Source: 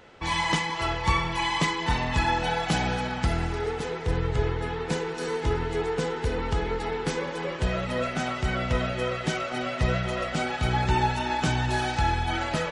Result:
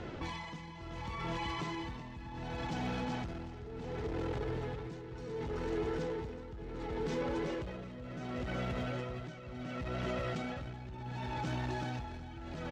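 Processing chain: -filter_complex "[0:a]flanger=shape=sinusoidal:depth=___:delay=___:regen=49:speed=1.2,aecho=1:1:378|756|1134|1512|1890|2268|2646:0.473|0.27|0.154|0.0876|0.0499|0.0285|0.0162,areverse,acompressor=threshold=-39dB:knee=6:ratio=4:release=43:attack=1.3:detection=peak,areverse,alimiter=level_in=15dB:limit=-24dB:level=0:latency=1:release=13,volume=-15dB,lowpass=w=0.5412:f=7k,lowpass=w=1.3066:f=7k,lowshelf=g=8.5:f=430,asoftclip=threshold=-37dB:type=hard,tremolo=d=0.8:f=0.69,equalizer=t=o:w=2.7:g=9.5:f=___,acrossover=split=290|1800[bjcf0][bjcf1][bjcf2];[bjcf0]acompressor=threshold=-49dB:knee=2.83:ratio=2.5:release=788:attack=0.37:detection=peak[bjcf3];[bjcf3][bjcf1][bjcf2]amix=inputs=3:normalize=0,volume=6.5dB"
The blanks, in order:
1.7, 2.8, 120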